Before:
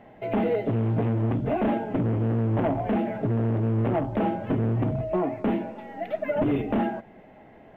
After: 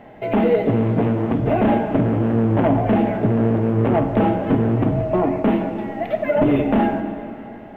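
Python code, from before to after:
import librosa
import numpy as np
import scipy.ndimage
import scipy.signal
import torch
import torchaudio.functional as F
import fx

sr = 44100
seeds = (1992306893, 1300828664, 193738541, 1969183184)

y = fx.rev_plate(x, sr, seeds[0], rt60_s=3.0, hf_ratio=0.8, predelay_ms=0, drr_db=7.0)
y = y * 10.0 ** (7.0 / 20.0)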